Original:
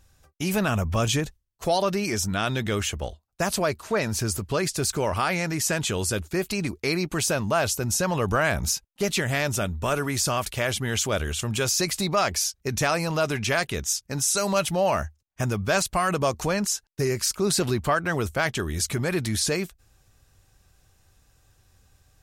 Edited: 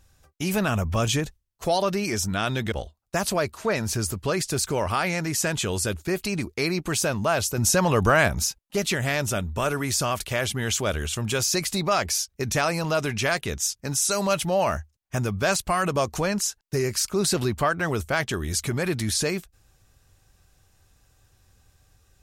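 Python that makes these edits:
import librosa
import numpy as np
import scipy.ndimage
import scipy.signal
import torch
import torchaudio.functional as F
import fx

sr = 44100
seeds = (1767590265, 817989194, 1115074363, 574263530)

y = fx.edit(x, sr, fx.cut(start_s=2.72, length_s=0.26),
    fx.clip_gain(start_s=7.84, length_s=0.7, db=4.0), tone=tone)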